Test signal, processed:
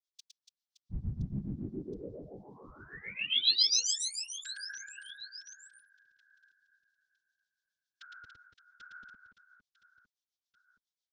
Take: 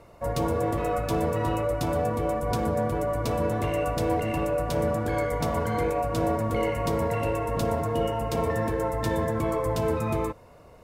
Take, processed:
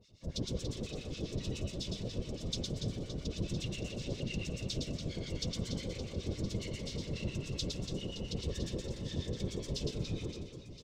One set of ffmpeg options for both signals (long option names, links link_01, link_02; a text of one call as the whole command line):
ffmpeg -i in.wav -filter_complex "[0:a]firequalizer=gain_entry='entry(140,0);entry(290,-5);entry(440,-7);entry(670,-24);entry(1300,-20);entry(3400,12);entry(5700,12);entry(11000,-17)':delay=0.05:min_phase=1,asplit=2[link_01][link_02];[link_02]alimiter=limit=-23dB:level=0:latency=1,volume=0dB[link_03];[link_01][link_03]amix=inputs=2:normalize=0,acrossover=split=1200[link_04][link_05];[link_04]aeval=exprs='val(0)*(1-1/2+1/2*cos(2*PI*7.3*n/s))':channel_layout=same[link_06];[link_05]aeval=exprs='val(0)*(1-1/2-1/2*cos(2*PI*7.3*n/s))':channel_layout=same[link_07];[link_06][link_07]amix=inputs=2:normalize=0,afftfilt=real='hypot(re,im)*cos(2*PI*random(0))':imag='hypot(re,im)*sin(2*PI*random(1))':win_size=512:overlap=0.75,aecho=1:1:110|286|567.6|1018|1739:0.631|0.398|0.251|0.158|0.1,volume=-4.5dB" out.wav